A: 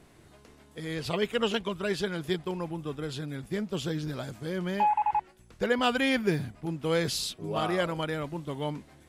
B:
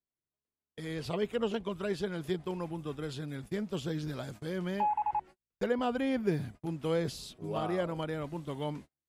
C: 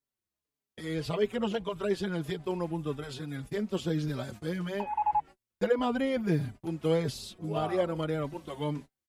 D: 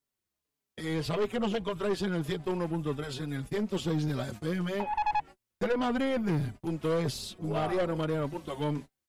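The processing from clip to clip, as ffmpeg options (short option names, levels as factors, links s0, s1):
-filter_complex "[0:a]agate=range=0.00891:threshold=0.00708:ratio=16:detection=peak,acrossover=split=990[s0][s1];[s1]acompressor=threshold=0.01:ratio=6[s2];[s0][s2]amix=inputs=2:normalize=0,volume=0.708"
-filter_complex "[0:a]asplit=2[s0][s1];[s1]adelay=4.6,afreqshift=-1.7[s2];[s0][s2]amix=inputs=2:normalize=1,volume=1.88"
-af "aeval=exprs='(tanh(25.1*val(0)+0.3)-tanh(0.3))/25.1':c=same,volume=1.58"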